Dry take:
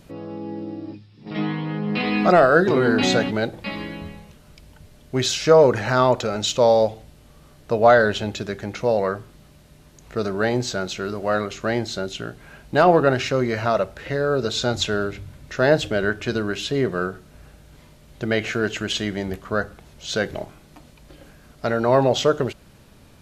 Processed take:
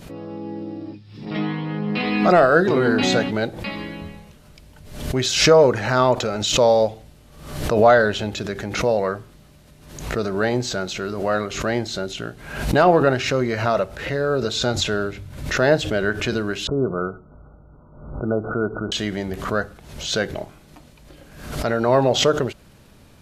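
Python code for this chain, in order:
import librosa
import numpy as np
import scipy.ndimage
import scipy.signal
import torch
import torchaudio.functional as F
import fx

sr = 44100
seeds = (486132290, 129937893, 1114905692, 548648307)

y = fx.brickwall_lowpass(x, sr, high_hz=1500.0, at=(16.67, 18.92))
y = fx.pre_swell(y, sr, db_per_s=72.0)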